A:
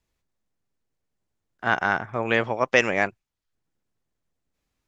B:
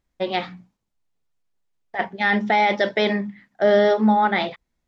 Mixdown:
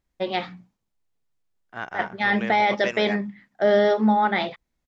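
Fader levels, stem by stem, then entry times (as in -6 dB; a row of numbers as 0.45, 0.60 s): -11.0, -2.0 dB; 0.10, 0.00 s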